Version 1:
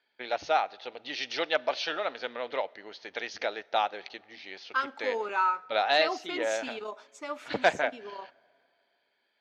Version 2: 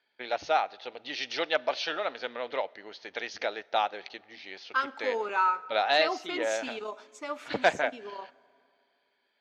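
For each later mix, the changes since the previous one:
second voice: send +9.0 dB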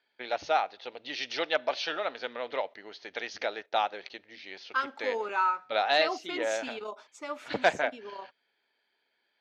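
reverb: off

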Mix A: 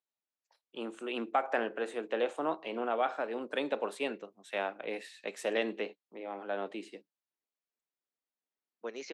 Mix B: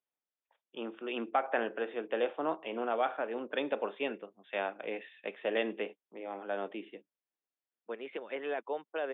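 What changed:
second voice: entry -0.95 s; master: add Chebyshev low-pass 3.6 kHz, order 10

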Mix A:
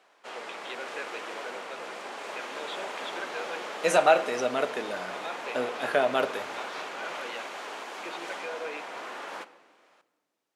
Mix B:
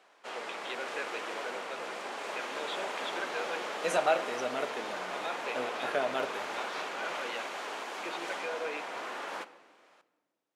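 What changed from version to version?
second voice -7.0 dB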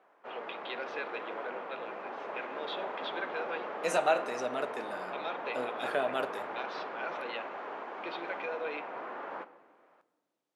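background: add low-pass 1.4 kHz 12 dB/octave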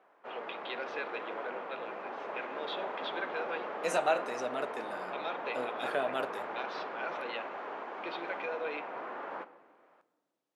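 second voice: send -11.5 dB

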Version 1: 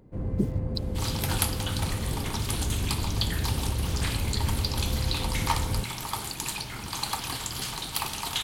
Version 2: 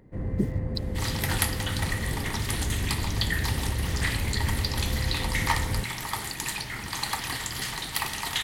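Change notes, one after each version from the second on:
master: add peaking EQ 1.9 kHz +14 dB 0.25 oct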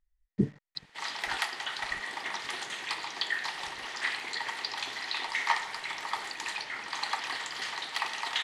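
first sound: muted; second sound: add high-pass 530 Hz 12 dB/octave; master: add distance through air 110 m

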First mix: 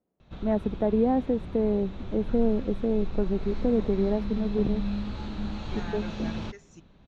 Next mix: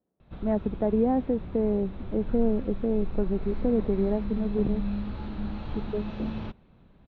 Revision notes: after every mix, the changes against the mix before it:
second voice: muted; reverb: off; master: add distance through air 270 m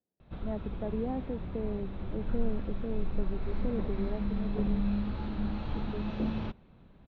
speech -10.5 dB

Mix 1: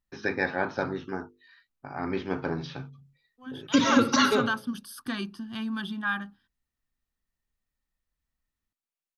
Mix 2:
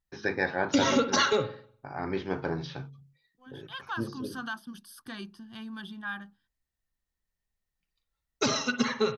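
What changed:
second voice -6.0 dB; background: entry -3.00 s; master: add graphic EQ with 31 bands 250 Hz -6 dB, 1.25 kHz -4 dB, 2.5 kHz -3 dB

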